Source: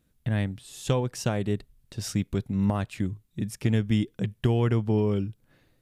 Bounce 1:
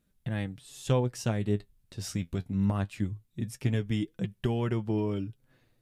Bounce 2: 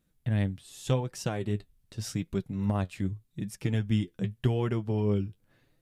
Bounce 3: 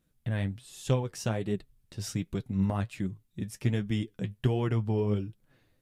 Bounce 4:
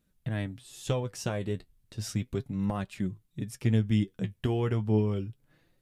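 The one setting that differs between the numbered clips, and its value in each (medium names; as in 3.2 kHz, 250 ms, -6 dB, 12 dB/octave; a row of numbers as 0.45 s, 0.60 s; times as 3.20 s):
flange, rate: 0.22 Hz, 0.85 Hz, 1.3 Hz, 0.34 Hz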